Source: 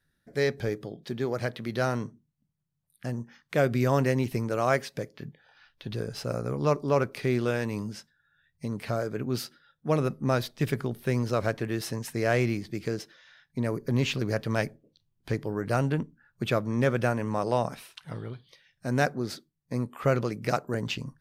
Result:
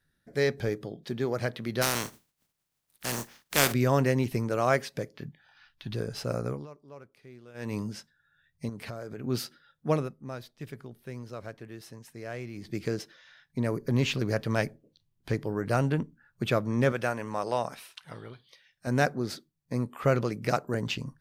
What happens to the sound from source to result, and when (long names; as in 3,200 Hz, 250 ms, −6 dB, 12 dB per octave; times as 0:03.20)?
0:01.81–0:03.72: compressing power law on the bin magnitudes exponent 0.34
0:05.26–0:05.93: parametric band 470 Hz −14.5 dB 0.63 octaves
0:06.47–0:07.74: duck −23.5 dB, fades 0.20 s
0:08.69–0:09.24: downward compressor 4 to 1, threshold −36 dBFS
0:09.91–0:12.73: duck −13.5 dB, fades 0.20 s
0:16.92–0:18.87: low-shelf EQ 360 Hz −10 dB